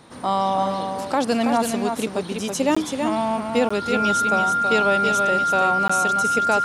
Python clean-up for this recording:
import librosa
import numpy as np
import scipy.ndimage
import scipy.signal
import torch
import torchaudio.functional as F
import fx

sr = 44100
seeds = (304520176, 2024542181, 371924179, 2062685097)

y = fx.notch(x, sr, hz=1400.0, q=30.0)
y = fx.fix_interpolate(y, sr, at_s=(2.75, 3.69, 5.88), length_ms=15.0)
y = fx.fix_echo_inverse(y, sr, delay_ms=327, level_db=-5.5)